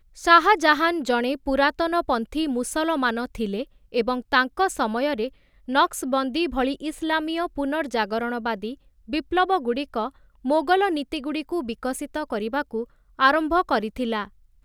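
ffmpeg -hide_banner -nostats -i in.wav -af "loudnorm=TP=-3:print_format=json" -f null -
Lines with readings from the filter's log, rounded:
"input_i" : "-23.7",
"input_tp" : "-4.0",
"input_lra" : "1.9",
"input_thresh" : "-33.9",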